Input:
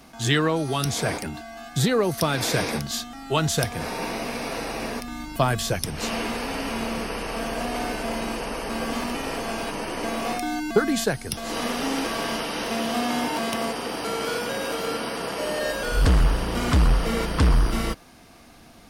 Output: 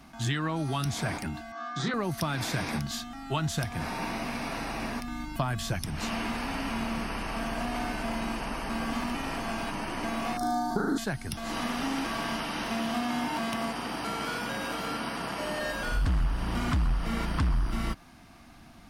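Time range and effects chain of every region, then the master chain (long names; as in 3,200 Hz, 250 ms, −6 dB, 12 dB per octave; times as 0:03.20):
0:01.52–0:01.94: loudspeaker in its box 270–6,000 Hz, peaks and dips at 1,200 Hz +9 dB, 2,700 Hz −8 dB, 4,400 Hz −3 dB + double-tracking delay 29 ms −4 dB
0:10.37–0:10.98: Butterworth band-reject 2,500 Hz, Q 1 + flutter between parallel walls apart 6.4 metres, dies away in 0.96 s
whole clip: parametric band 470 Hz −13 dB 0.68 octaves; downward compressor 4 to 1, threshold −25 dBFS; high-shelf EQ 2,800 Hz −8 dB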